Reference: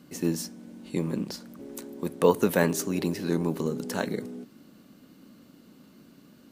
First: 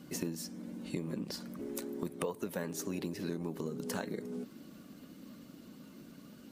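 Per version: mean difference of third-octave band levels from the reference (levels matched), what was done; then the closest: 7.5 dB: bin magnitudes rounded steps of 15 dB; compressor 10:1, threshold -35 dBFS, peak gain reduction 20 dB; gain +1.5 dB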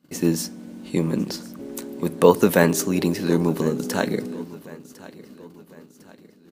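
2.0 dB: gate -51 dBFS, range -21 dB; on a send: feedback echo 1.053 s, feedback 45%, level -19.5 dB; on the sum: gain +6.5 dB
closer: second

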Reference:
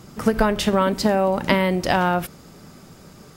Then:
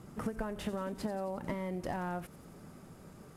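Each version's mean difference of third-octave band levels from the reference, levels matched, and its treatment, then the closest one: 5.0 dB: CVSD 64 kbps; bell 4900 Hz -10.5 dB 1.9 oct; compressor, threshold -27 dBFS, peak gain reduction 13 dB; on a send: thin delay 89 ms, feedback 69%, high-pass 5100 Hz, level -9.5 dB; on the sum: gain -7 dB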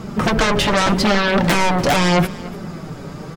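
7.0 dB: LPF 2000 Hz 6 dB/oct; in parallel at -5 dB: sine folder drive 18 dB, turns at -5 dBFS; on the sum: flange 0.82 Hz, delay 4.4 ms, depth 2.9 ms, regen +38%; echo 0.291 s -19 dB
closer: first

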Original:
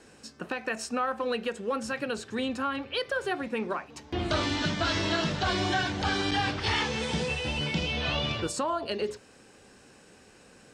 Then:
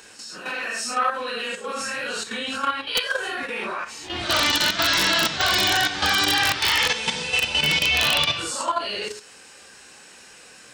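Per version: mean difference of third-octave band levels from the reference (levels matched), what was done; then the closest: 7.5 dB: phase scrambler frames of 0.2 s; tilt shelf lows -8.5 dB, about 700 Hz; level quantiser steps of 9 dB; wrapped overs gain 17.5 dB; gain +7 dB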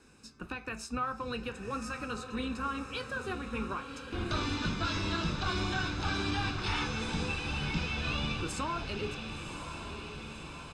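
5.5 dB: octaver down 2 oct, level -5 dB; comb 0.8 ms, depth 52%; on a send: diffused feedback echo 1.064 s, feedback 63%, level -8 dB; on the sum: flange 0.44 Hz, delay 7.3 ms, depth 6.8 ms, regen -68%; gain -2.5 dB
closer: second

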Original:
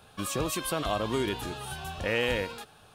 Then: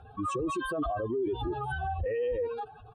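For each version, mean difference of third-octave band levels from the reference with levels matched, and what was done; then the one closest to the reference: 15.0 dB: spectral contrast raised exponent 2.8; comb 2.6 ms, depth 68%; limiter -29 dBFS, peak gain reduction 11 dB; air absorption 58 m; gain +4 dB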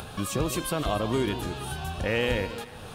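4.0 dB: low shelf 320 Hz +6 dB; upward compressor, threshold -29 dBFS; on a send: echo with dull and thin repeats by turns 0.148 s, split 1000 Hz, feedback 54%, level -11.5 dB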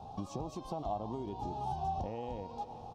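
10.5 dB: high shelf 4300 Hz -10.5 dB; feedback echo 0.127 s, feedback 60%, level -21 dB; compressor 5:1, threshold -44 dBFS, peak gain reduction 17 dB; EQ curve 220 Hz 0 dB, 560 Hz -5 dB, 800 Hz +10 dB, 1600 Hz -27 dB, 5800 Hz -3 dB, 9700 Hz -21 dB; gain +7.5 dB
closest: second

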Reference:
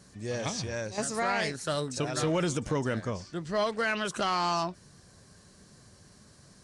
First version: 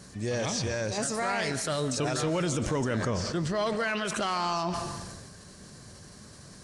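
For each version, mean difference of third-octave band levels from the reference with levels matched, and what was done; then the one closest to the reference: 5.0 dB: limiter -28 dBFS, peak gain reduction 8.5 dB; digital reverb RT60 0.99 s, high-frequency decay 0.95×, pre-delay 0.1 s, DRR 13.5 dB; sustainer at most 30 dB/s; gain +6.5 dB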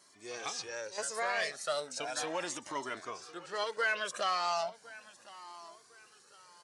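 7.0 dB: HPF 520 Hz 12 dB/oct; feedback echo 1.057 s, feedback 35%, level -18.5 dB; cascading flanger rising 0.36 Hz; gain +1.5 dB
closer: first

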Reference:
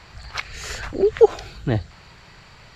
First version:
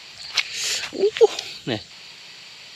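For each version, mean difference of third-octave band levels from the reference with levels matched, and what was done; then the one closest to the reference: 5.5 dB: HPF 220 Hz 12 dB/oct; resonant high shelf 2100 Hz +10.5 dB, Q 1.5; gain -1 dB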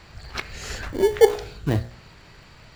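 3.0 dB: de-hum 59.69 Hz, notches 36; in parallel at -8 dB: sample-rate reducer 1300 Hz, jitter 0%; on the sum: gain -2.5 dB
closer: second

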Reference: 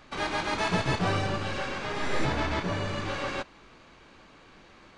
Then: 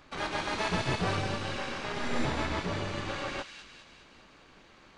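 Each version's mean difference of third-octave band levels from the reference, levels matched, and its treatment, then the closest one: 1.5 dB: AM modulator 240 Hz, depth 60%; thin delay 0.202 s, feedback 55%, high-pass 2800 Hz, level -4 dB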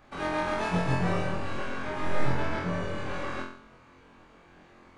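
3.5 dB: bell 4500 Hz -9 dB 1.8 oct; on a send: flutter echo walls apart 3.9 m, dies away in 0.55 s; on the sum: gain -3.5 dB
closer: first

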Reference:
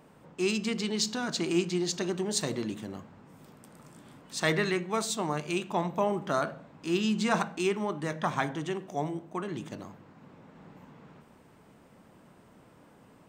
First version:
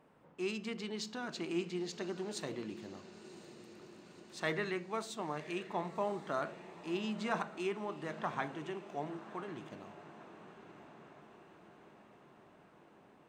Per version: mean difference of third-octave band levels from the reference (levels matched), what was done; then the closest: 4.5 dB: tone controls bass -5 dB, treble -9 dB; diffused feedback echo 1.044 s, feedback 63%, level -15 dB; gain -7.5 dB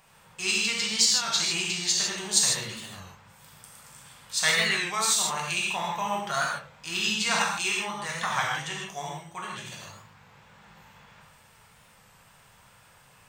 8.5 dB: passive tone stack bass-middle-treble 10-0-10; non-linear reverb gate 0.18 s flat, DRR -3.5 dB; record warp 33 1/3 rpm, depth 100 cents; gain +7.5 dB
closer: first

